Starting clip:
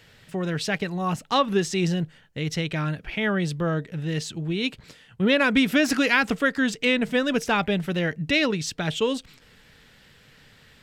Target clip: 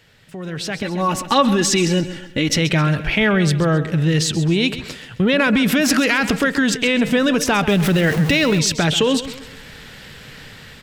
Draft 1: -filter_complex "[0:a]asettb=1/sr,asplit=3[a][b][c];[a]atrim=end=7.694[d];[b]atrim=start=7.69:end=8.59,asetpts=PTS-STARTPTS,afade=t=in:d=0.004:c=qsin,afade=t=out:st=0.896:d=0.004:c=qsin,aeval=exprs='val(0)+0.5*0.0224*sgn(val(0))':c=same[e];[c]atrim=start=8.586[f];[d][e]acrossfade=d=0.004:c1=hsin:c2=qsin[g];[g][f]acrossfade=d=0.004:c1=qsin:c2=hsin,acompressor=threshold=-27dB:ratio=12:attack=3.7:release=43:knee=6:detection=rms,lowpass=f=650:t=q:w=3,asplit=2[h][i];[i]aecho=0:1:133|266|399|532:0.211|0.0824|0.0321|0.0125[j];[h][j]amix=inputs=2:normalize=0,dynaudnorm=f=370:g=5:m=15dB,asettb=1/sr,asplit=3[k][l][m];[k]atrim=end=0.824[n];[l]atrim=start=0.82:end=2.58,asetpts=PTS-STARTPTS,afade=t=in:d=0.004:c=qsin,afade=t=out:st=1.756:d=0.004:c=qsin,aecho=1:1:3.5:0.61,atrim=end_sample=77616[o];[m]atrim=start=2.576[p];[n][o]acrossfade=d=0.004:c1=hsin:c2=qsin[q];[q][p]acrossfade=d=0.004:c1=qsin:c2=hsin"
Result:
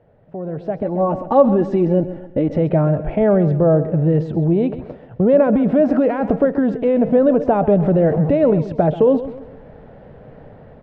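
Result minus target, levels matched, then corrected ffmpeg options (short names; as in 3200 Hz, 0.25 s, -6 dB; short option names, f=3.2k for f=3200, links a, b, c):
500 Hz band +5.5 dB
-filter_complex "[0:a]asettb=1/sr,asplit=3[a][b][c];[a]atrim=end=7.694[d];[b]atrim=start=7.69:end=8.59,asetpts=PTS-STARTPTS,afade=t=in:d=0.004:c=qsin,afade=t=out:st=0.896:d=0.004:c=qsin,aeval=exprs='val(0)+0.5*0.0224*sgn(val(0))':c=same[e];[c]atrim=start=8.586[f];[d][e]acrossfade=d=0.004:c1=hsin:c2=qsin[g];[g][f]acrossfade=d=0.004:c1=qsin:c2=hsin,acompressor=threshold=-27dB:ratio=12:attack=3.7:release=43:knee=6:detection=rms,asplit=2[h][i];[i]aecho=0:1:133|266|399|532:0.211|0.0824|0.0321|0.0125[j];[h][j]amix=inputs=2:normalize=0,dynaudnorm=f=370:g=5:m=15dB,asettb=1/sr,asplit=3[k][l][m];[k]atrim=end=0.824[n];[l]atrim=start=0.82:end=2.58,asetpts=PTS-STARTPTS,afade=t=in:d=0.004:c=qsin,afade=t=out:st=1.756:d=0.004:c=qsin,aecho=1:1:3.5:0.61,atrim=end_sample=77616[o];[m]atrim=start=2.576[p];[n][o]acrossfade=d=0.004:c1=hsin:c2=qsin[q];[q][p]acrossfade=d=0.004:c1=qsin:c2=hsin"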